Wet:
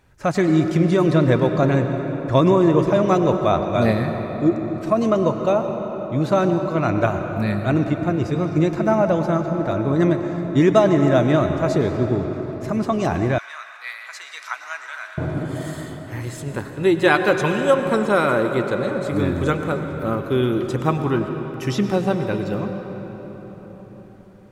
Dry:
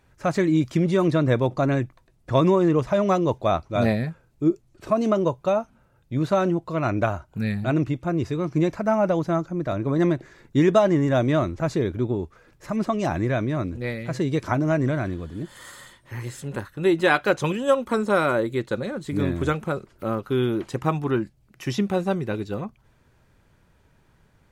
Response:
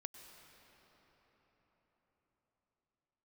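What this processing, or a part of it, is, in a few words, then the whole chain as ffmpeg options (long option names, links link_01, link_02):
cathedral: -filter_complex "[1:a]atrim=start_sample=2205[link_01];[0:a][link_01]afir=irnorm=-1:irlink=0,asettb=1/sr,asplit=3[link_02][link_03][link_04];[link_02]atrim=end=13.384[link_05];[link_03]atrim=start=13.38:end=15.18,asetpts=PTS-STARTPTS,afade=type=in:duration=0.004:curve=qsin,afade=type=out:start_time=1.796:duration=0.004:curve=qsin,highpass=frequency=1200:width=0.5412,highpass=frequency=1200:width=1.3066[link_06];[link_04]atrim=start=15.176[link_07];[link_05][link_06]acrossfade=duration=0.004:curve1=hsin:curve2=qsin[link_08];[link_08][link_07]acrossfade=duration=0.004:curve1=qsin:curve2=hsin,volume=8dB"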